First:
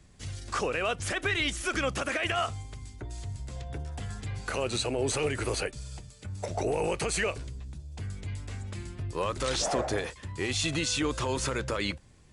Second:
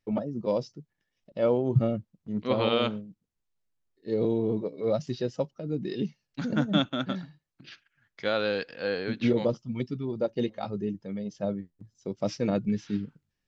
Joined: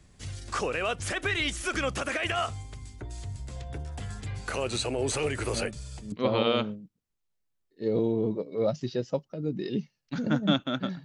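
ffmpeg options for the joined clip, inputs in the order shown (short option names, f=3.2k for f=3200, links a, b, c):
-filter_complex "[1:a]asplit=2[a][b];[0:a]apad=whole_dur=11.04,atrim=end=11.04,atrim=end=6.122[c];[b]atrim=start=2.378:end=7.3[d];[a]atrim=start=1.79:end=2.38,asetpts=PTS-STARTPTS,volume=-9.5dB,afade=t=in:d=0.004:c=hsin,afade=t=out:st=0.586:d=0.004:c=hsin,adelay=243873S[e];[c][d]acrossfade=d=0.004:c1=hsin:c2=hsin[f];[f][e]amix=inputs=2:normalize=0"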